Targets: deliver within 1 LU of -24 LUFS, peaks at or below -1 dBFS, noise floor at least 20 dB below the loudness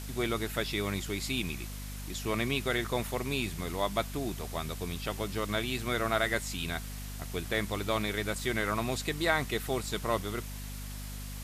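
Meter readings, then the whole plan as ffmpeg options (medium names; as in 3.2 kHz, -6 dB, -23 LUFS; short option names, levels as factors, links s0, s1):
hum 50 Hz; highest harmonic 250 Hz; hum level -39 dBFS; noise floor -40 dBFS; noise floor target -53 dBFS; loudness -33.0 LUFS; peak level -12.5 dBFS; loudness target -24.0 LUFS
-> -af "bandreject=f=50:t=h:w=6,bandreject=f=100:t=h:w=6,bandreject=f=150:t=h:w=6,bandreject=f=200:t=h:w=6,bandreject=f=250:t=h:w=6"
-af "afftdn=nr=13:nf=-40"
-af "volume=2.82"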